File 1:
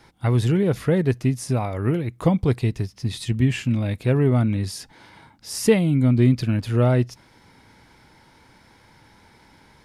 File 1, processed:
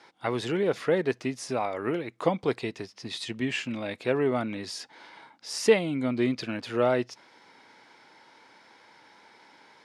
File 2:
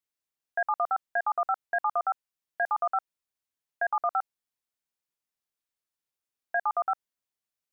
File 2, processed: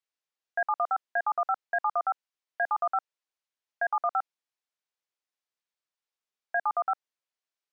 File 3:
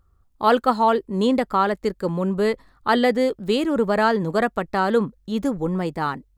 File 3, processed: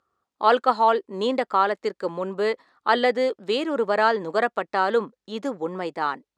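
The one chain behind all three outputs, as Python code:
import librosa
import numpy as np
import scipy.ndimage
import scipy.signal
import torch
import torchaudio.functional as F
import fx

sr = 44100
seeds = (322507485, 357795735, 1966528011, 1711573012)

y = fx.bandpass_edges(x, sr, low_hz=390.0, high_hz=6200.0)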